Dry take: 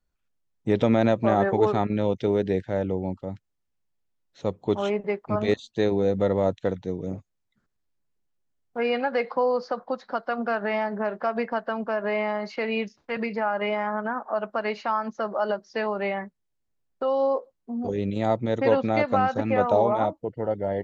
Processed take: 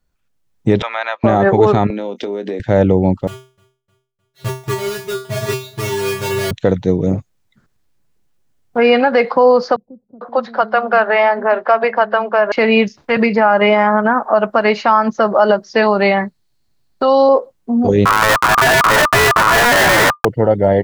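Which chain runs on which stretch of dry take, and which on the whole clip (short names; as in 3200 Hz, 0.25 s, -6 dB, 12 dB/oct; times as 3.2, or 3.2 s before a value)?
0.82–1.24 HPF 970 Hz 24 dB/oct + air absorption 240 m
1.9–2.6 steep high-pass 220 Hz + compressor 16:1, threshold -33 dBFS + doubler 25 ms -13.5 dB
3.27–6.51 half-waves squared off + resonator 130 Hz, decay 0.36 s, harmonics odd, mix 100% + feedback echo 0.306 s, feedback 48%, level -23.5 dB
9.76–12.52 three-band isolator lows -13 dB, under 380 Hz, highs -15 dB, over 4400 Hz + bands offset in time lows, highs 0.45 s, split 230 Hz
15.82–17.29 bell 4300 Hz +12.5 dB 0.29 oct + notch 490 Hz, Q 5.3
18.05–20.25 steep low-pass 2000 Hz 48 dB/oct + Schmitt trigger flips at -28.5 dBFS + ring modulator 1200 Hz
whole clip: bell 130 Hz +4.5 dB 0.68 oct; AGC gain up to 6 dB; maximiser +10 dB; gain -1 dB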